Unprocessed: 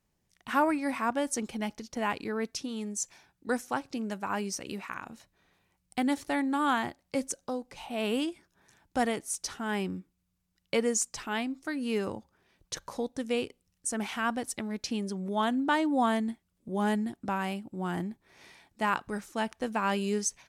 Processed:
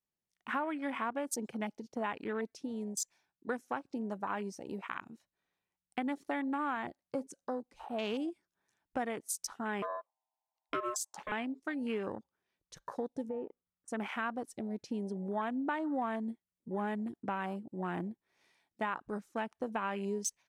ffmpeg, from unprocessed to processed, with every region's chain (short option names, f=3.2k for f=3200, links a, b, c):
-filter_complex "[0:a]asettb=1/sr,asplit=3[a][b][c];[a]atrim=end=9.824[d];[b]atrim=start=9.82:end=11.32,asetpts=PTS-STARTPTS,afade=t=in:d=0.004:c=qsin,afade=t=out:st=1.496:d=0.004:c=qsin,lowshelf=f=120:g=9,aeval=exprs='val(0)*sin(2*PI*840*n/s)':c=same[e];[c]atrim=start=11.316[f];[d][e]acrossfade=d=0.004:c1=hsin:c2=qsin[g];[g][f]acrossfade=d=0.004:c1=qsin:c2=hsin,asettb=1/sr,asplit=3[h][i][j];[h]atrim=end=13.294[k];[i]atrim=start=13.29:end=13.88,asetpts=PTS-STARTPTS,afade=t=in:d=0.004:c=qsin,afade=t=out:st=0.586:d=0.004:c=qsin,lowpass=f=1.3k:t=q:w=2.5,acompressor=threshold=-32dB:ratio=5:attack=3.2:release=140:knee=1:detection=peak[l];[j]atrim=start=13.876[m];[k][l]acrossfade=d=0.004:c1=hsin:c2=qsin[n];[n][m]acrossfade=d=0.004:c1=qsin:c2=hsin,afwtdn=0.0112,lowshelf=f=140:g=-10.5,acompressor=threshold=-32dB:ratio=5"